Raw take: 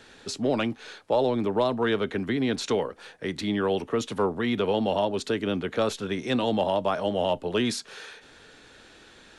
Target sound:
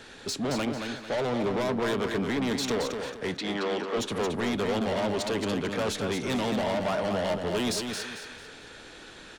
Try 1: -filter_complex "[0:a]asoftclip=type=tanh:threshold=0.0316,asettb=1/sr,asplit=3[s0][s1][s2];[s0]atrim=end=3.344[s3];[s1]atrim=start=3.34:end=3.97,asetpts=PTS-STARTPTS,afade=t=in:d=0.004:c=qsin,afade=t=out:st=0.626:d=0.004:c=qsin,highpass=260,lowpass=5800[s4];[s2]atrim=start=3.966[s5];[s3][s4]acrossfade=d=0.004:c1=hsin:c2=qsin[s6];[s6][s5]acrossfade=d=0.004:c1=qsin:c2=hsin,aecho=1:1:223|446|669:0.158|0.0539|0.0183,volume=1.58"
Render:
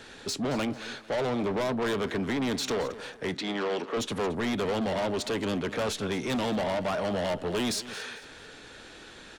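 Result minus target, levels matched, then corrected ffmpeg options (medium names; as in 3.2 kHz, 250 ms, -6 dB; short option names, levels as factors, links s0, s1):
echo-to-direct -10 dB
-filter_complex "[0:a]asoftclip=type=tanh:threshold=0.0316,asettb=1/sr,asplit=3[s0][s1][s2];[s0]atrim=end=3.344[s3];[s1]atrim=start=3.34:end=3.97,asetpts=PTS-STARTPTS,afade=t=in:d=0.004:c=qsin,afade=t=out:st=0.626:d=0.004:c=qsin,highpass=260,lowpass=5800[s4];[s2]atrim=start=3.966[s5];[s3][s4]acrossfade=d=0.004:c1=hsin:c2=qsin[s6];[s6][s5]acrossfade=d=0.004:c1=qsin:c2=hsin,aecho=1:1:223|446|669|892:0.501|0.17|0.0579|0.0197,volume=1.58"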